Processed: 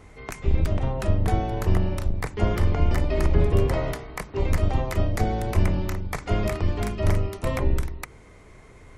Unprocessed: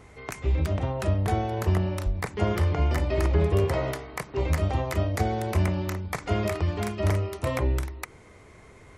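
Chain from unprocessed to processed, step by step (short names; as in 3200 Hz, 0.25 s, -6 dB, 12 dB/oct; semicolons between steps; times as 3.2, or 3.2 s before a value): octaver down 2 oct, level +2 dB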